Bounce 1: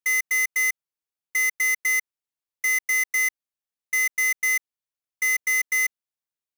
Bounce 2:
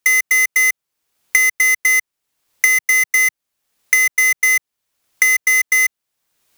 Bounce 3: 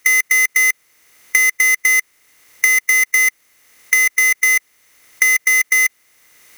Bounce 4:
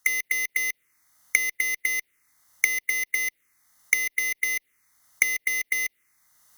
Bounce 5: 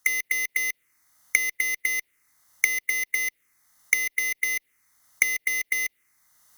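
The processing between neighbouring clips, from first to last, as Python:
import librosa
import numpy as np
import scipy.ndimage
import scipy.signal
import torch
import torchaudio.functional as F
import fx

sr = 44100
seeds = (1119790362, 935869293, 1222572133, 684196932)

y1 = fx.band_squash(x, sr, depth_pct=100)
y1 = y1 * 10.0 ** (8.0 / 20.0)
y2 = fx.bin_compress(y1, sr, power=0.6)
y2 = y2 * 10.0 ** (-1.0 / 20.0)
y3 = fx.cheby_harmonics(y2, sr, harmonics=(3, 5, 7), levels_db=(-9, -18, -28), full_scale_db=-1.0)
y3 = fx.env_phaser(y3, sr, low_hz=400.0, high_hz=1500.0, full_db=-19.0)
y3 = y3 * 10.0 ** (1.0 / 20.0)
y4 = fx.quant_companded(y3, sr, bits=8)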